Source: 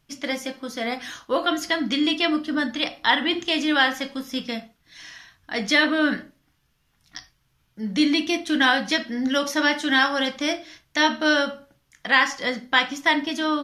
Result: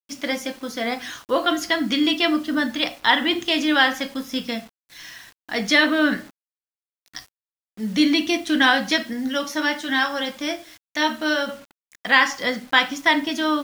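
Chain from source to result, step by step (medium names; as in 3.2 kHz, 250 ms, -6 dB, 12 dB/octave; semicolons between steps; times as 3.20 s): 9.13–11.49 s: flange 1.3 Hz, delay 8.3 ms, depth 1.6 ms, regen -58%; bit crusher 8-bit; trim +2 dB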